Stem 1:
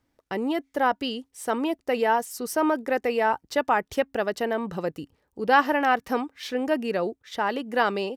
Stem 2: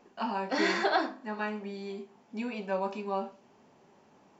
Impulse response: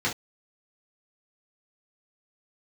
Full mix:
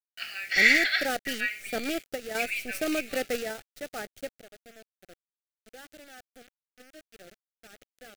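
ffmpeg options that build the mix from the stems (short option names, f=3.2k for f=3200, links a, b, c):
-filter_complex "[0:a]highshelf=f=11k:g=5.5,acrusher=bits=5:dc=4:mix=0:aa=0.000001,equalizer=f=870:t=o:w=0.27:g=5.5,adelay=250,volume=-5dB[a];[1:a]highpass=f=2.1k:t=q:w=5.7,highshelf=f=5.5k:g=12,volume=1dB,asplit=2[b][c];[c]apad=whole_len=371257[d];[a][d]sidechaingate=range=-23dB:threshold=-60dB:ratio=16:detection=peak[e];[e][b]amix=inputs=2:normalize=0,acrusher=bits=7:mix=0:aa=0.000001,asuperstop=centerf=980:order=4:qfactor=1.5"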